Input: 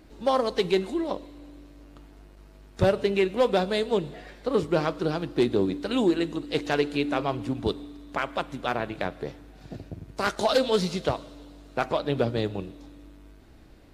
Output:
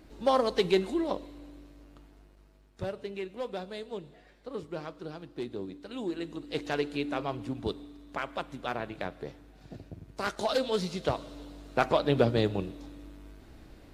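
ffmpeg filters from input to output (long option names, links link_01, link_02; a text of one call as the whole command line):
ffmpeg -i in.wav -af "volume=13.5dB,afade=type=out:start_time=1.31:duration=1.51:silence=0.237137,afade=type=in:start_time=5.95:duration=0.66:silence=0.398107,afade=type=in:start_time=10.94:duration=0.45:silence=0.446684" out.wav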